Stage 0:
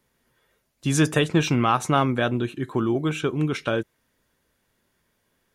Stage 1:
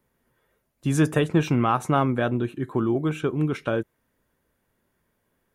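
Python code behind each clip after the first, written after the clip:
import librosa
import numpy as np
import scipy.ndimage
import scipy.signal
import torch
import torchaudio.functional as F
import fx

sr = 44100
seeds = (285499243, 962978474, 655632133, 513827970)

y = fx.peak_eq(x, sr, hz=4800.0, db=-9.5, octaves=2.2)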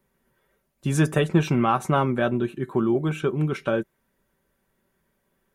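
y = x + 0.45 * np.pad(x, (int(5.2 * sr / 1000.0), 0))[:len(x)]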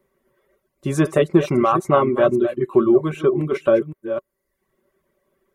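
y = fx.reverse_delay(x, sr, ms=262, wet_db=-9)
y = fx.dereverb_blind(y, sr, rt60_s=0.64)
y = fx.small_body(y, sr, hz=(380.0, 570.0, 1100.0, 2000.0), ring_ms=35, db=12)
y = F.gain(torch.from_numpy(y), -1.0).numpy()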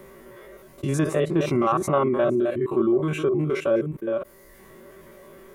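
y = fx.spec_steps(x, sr, hold_ms=50)
y = fx.env_flatten(y, sr, amount_pct=50)
y = F.gain(torch.from_numpy(y), -6.0).numpy()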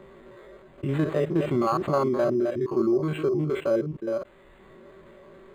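y = np.interp(np.arange(len(x)), np.arange(len(x))[::8], x[::8])
y = F.gain(torch.from_numpy(y), -2.0).numpy()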